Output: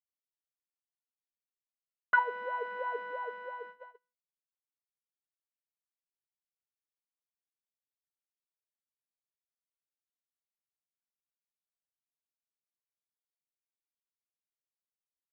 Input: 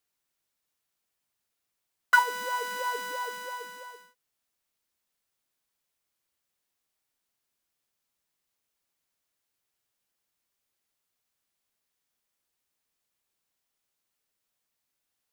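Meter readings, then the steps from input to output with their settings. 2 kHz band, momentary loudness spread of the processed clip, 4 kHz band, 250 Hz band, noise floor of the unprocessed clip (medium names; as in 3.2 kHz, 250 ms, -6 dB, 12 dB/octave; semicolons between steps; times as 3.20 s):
-5.5 dB, 15 LU, -18.0 dB, no reading, -83 dBFS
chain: cabinet simulation 250–2200 Hz, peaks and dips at 280 Hz -8 dB, 450 Hz +5 dB, 640 Hz +8 dB, 1.2 kHz -3 dB, 2.2 kHz -3 dB; gate -43 dBFS, range -27 dB; trim -4.5 dB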